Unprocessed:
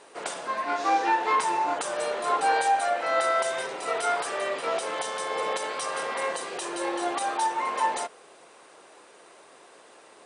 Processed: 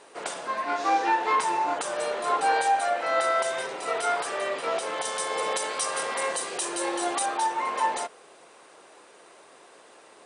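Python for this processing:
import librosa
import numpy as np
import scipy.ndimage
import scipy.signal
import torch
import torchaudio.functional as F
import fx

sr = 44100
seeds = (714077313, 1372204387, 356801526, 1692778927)

y = fx.high_shelf(x, sr, hz=6100.0, db=11.0, at=(5.05, 7.26))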